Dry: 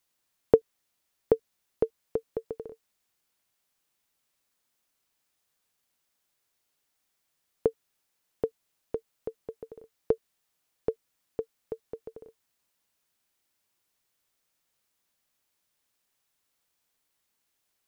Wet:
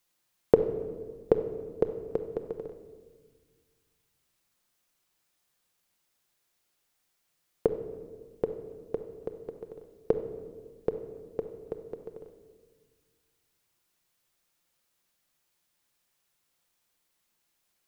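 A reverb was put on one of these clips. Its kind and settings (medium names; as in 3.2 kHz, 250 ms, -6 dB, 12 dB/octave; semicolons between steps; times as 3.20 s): simulated room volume 1700 m³, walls mixed, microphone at 0.88 m; trim +1 dB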